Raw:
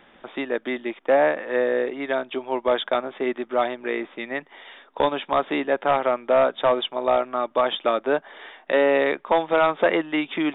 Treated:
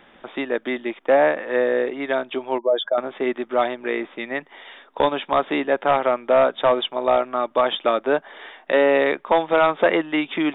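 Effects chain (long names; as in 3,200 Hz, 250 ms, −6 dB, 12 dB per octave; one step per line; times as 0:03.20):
0:02.58–0:02.98: expanding power law on the bin magnitudes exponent 2.1
level +2 dB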